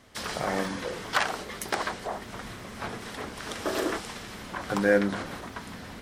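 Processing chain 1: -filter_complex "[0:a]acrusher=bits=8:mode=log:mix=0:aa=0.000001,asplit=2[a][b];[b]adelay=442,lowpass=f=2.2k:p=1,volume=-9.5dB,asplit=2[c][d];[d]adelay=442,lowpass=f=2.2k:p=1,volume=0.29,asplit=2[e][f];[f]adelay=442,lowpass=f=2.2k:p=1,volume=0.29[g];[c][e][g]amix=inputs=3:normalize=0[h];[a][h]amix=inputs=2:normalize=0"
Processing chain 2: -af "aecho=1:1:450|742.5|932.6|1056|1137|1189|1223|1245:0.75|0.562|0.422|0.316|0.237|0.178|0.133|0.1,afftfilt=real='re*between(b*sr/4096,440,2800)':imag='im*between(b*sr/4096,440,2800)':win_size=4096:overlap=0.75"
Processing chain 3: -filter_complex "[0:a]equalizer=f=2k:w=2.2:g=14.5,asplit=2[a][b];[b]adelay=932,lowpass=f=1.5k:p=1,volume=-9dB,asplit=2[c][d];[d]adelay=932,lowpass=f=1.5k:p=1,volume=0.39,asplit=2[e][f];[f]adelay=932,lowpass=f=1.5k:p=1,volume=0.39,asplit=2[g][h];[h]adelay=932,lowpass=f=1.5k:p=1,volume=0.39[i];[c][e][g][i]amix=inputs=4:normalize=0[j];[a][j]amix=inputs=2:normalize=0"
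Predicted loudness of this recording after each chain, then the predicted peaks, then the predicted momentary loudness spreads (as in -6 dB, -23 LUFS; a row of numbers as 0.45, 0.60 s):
-30.5, -29.5, -26.0 LUFS; -9.0, -10.0, -3.5 dBFS; 13, 9, 12 LU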